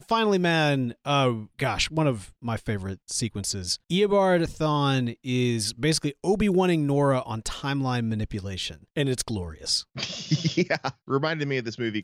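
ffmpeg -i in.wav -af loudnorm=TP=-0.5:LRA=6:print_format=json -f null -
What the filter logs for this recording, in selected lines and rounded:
"input_i" : "-26.0",
"input_tp" : "-12.0",
"input_lra" : "3.0",
"input_thresh" : "-36.0",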